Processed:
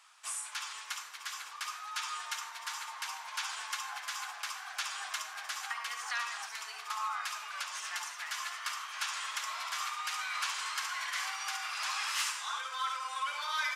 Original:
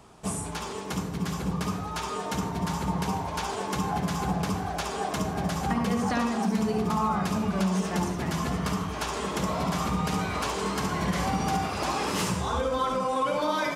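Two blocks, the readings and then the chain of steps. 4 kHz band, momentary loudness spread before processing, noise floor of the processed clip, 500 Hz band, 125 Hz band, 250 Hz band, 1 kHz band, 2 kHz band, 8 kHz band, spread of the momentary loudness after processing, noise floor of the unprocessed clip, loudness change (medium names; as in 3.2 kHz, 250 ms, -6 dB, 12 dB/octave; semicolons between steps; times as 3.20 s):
-0.5 dB, 5 LU, -47 dBFS, -29.0 dB, under -40 dB, under -40 dB, -9.0 dB, -0.5 dB, -1.5 dB, 6 LU, -35 dBFS, -8.0 dB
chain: high-pass 1.3 kHz 24 dB/octave; treble shelf 11 kHz -6.5 dB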